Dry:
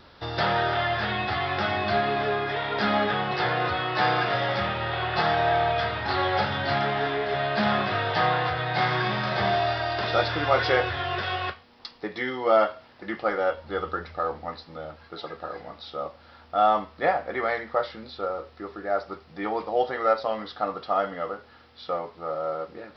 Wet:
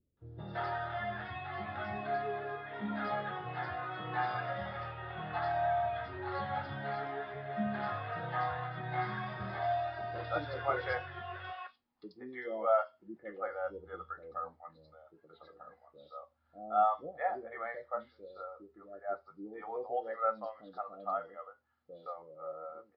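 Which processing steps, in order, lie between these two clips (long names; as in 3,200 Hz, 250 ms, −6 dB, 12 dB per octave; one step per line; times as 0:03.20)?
three-band delay without the direct sound lows, mids, highs 170/260 ms, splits 490/3,900 Hz
every bin expanded away from the loudest bin 1.5 to 1
level −7.5 dB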